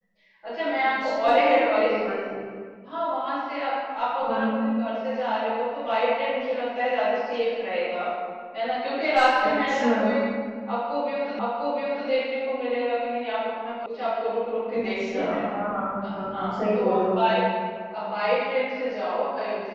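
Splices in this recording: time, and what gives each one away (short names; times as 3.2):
11.39 repeat of the last 0.7 s
13.86 sound cut off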